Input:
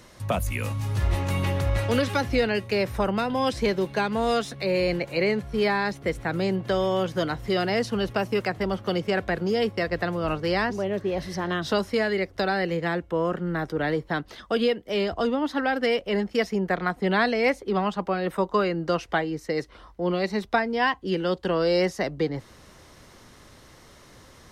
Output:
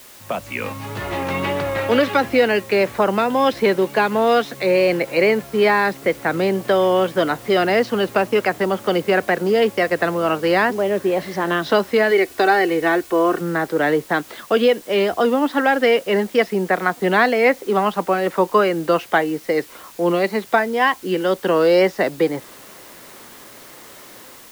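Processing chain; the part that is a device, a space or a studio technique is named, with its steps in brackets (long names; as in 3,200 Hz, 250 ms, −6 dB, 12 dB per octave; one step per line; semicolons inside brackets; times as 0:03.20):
dictaphone (band-pass filter 250–3,200 Hz; automatic gain control gain up to 9 dB; tape wow and flutter; white noise bed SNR 25 dB)
0:12.11–0:13.41: comb filter 2.7 ms, depth 59%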